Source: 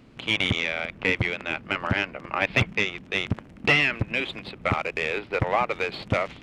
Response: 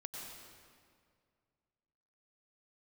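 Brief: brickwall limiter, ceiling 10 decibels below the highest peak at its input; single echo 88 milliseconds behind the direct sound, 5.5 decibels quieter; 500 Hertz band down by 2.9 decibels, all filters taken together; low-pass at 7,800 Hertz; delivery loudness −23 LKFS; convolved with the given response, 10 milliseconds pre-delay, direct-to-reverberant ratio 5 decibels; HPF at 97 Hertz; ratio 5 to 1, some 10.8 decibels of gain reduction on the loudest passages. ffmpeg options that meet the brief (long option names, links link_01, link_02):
-filter_complex "[0:a]highpass=97,lowpass=7800,equalizer=frequency=500:width_type=o:gain=-3.5,acompressor=threshold=-29dB:ratio=5,alimiter=limit=-23.5dB:level=0:latency=1,aecho=1:1:88:0.531,asplit=2[link_01][link_02];[1:a]atrim=start_sample=2205,adelay=10[link_03];[link_02][link_03]afir=irnorm=-1:irlink=0,volume=-3dB[link_04];[link_01][link_04]amix=inputs=2:normalize=0,volume=10.5dB"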